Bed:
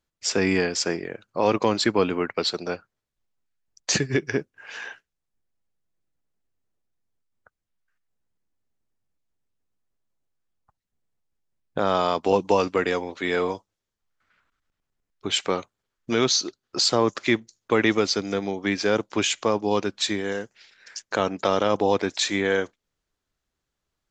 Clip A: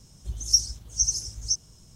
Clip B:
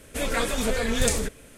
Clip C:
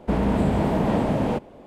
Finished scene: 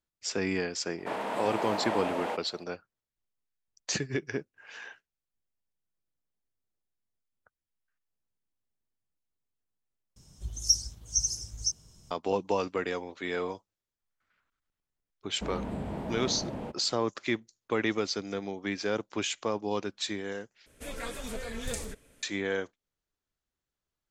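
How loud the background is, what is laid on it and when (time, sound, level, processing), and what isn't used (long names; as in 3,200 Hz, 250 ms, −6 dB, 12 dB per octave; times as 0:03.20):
bed −8.5 dB
0:00.98: mix in C −2.5 dB + high-pass filter 680 Hz
0:10.16: overwrite with A −4 dB
0:15.33: mix in C −14.5 dB
0:20.66: overwrite with B −12.5 dB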